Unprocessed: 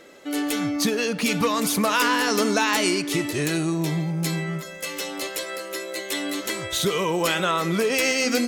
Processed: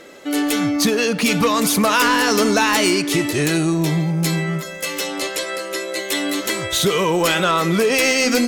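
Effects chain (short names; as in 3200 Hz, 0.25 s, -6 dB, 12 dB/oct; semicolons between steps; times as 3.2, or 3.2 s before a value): 5.07–5.99 LPF 11000 Hz 12 dB/oct; sine folder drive 4 dB, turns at -8 dBFS; gain -1.5 dB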